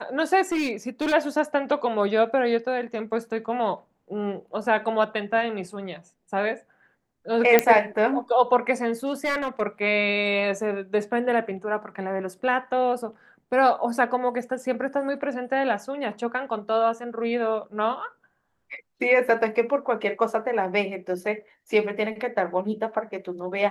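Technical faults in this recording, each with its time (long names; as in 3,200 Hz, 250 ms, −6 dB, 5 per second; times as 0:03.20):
0:00.52–0:01.14: clipping −21 dBFS
0:07.59: click −2 dBFS
0:09.06–0:09.62: clipping −20 dBFS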